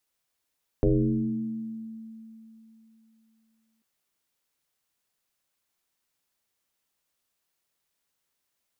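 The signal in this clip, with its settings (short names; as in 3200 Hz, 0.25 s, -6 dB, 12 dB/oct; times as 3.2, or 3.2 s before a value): FM tone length 2.99 s, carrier 223 Hz, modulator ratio 0.42, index 3.1, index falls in 1.95 s exponential, decay 3.25 s, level -17 dB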